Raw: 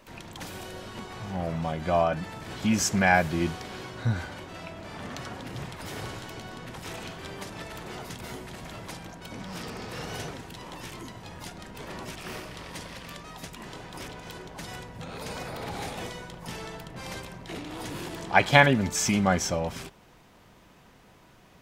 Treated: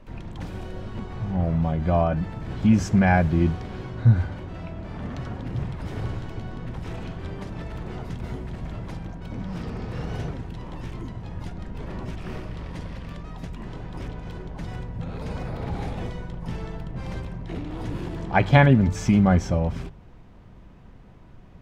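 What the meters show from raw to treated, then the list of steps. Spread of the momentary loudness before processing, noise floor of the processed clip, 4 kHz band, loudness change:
18 LU, -47 dBFS, -7.0 dB, +3.5 dB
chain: RIAA curve playback; de-hum 48.86 Hz, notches 3; trim -1 dB

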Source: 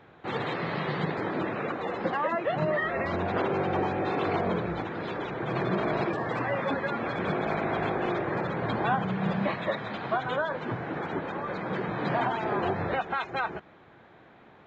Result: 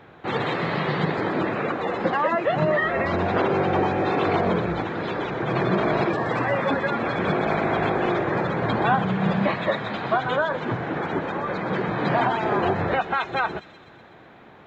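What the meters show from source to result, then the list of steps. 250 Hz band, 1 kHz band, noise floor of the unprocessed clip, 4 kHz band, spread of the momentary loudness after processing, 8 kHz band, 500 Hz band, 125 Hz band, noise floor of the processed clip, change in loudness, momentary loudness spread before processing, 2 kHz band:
+6.0 dB, +6.0 dB, -55 dBFS, +6.5 dB, 5 LU, no reading, +6.0 dB, +6.0 dB, -48 dBFS, +6.0 dB, 5 LU, +6.0 dB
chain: feedback echo behind a high-pass 124 ms, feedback 67%, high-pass 4.9 kHz, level -5.5 dB; trim +6 dB

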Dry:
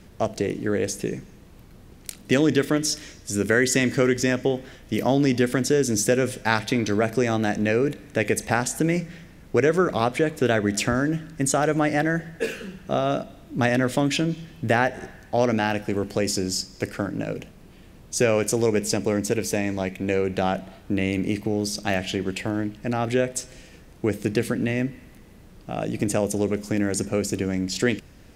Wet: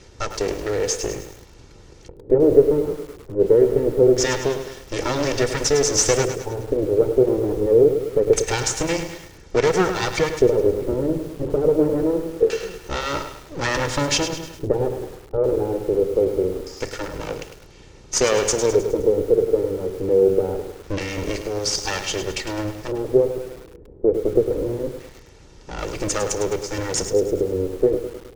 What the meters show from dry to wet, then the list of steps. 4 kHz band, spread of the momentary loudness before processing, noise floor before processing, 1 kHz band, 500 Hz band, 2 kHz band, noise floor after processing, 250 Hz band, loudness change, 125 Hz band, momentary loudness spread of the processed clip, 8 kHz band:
+3.0 dB, 9 LU, -48 dBFS, -1.5 dB, +6.0 dB, -3.5 dB, -46 dBFS, -1.5 dB, +3.0 dB, -1.5 dB, 13 LU, +3.5 dB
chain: comb filter that takes the minimum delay 2.2 ms; LFO low-pass square 0.24 Hz 440–6200 Hz; bit-crushed delay 104 ms, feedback 55%, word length 7-bit, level -8.5 dB; trim +3.5 dB

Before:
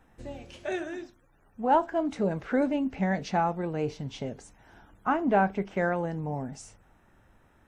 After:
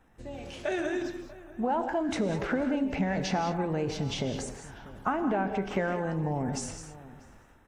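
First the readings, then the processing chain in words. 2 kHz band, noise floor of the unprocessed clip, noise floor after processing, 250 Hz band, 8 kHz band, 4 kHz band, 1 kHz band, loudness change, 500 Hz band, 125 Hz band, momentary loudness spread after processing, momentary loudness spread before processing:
-1.0 dB, -63 dBFS, -57 dBFS, 0.0 dB, +9.0 dB, +6.5 dB, -4.0 dB, -2.0 dB, -1.5 dB, +1.0 dB, 15 LU, 16 LU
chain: compression 6:1, threshold -32 dBFS, peak gain reduction 13.5 dB; transient shaper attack +1 dB, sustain +7 dB; level rider gain up to 8 dB; echo from a far wall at 110 m, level -18 dB; gated-style reverb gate 230 ms rising, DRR 8 dB; trim -3 dB

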